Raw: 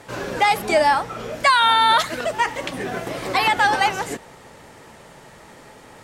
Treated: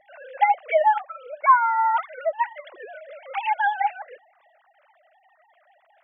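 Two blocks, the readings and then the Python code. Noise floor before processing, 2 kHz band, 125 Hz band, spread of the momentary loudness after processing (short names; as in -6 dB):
-46 dBFS, -7.5 dB, under -40 dB, 23 LU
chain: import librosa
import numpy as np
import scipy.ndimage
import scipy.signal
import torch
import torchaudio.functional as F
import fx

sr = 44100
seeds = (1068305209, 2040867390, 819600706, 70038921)

y = fx.sine_speech(x, sr)
y = fx.hum_notches(y, sr, base_hz=60, count=5)
y = y * librosa.db_to_amplitude(-3.5)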